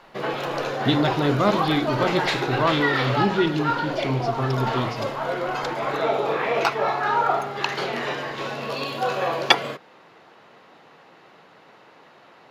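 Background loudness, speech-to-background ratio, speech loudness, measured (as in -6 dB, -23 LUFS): -25.0 LUFS, 0.5 dB, -24.5 LUFS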